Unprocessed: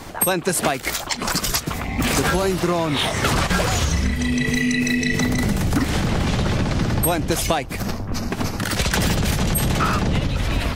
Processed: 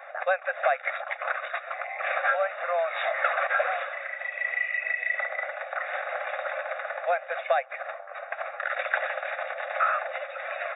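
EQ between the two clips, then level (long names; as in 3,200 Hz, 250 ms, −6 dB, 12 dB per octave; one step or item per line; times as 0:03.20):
linear-phase brick-wall band-pass 500–3,800 Hz
phaser with its sweep stopped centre 640 Hz, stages 8
0.0 dB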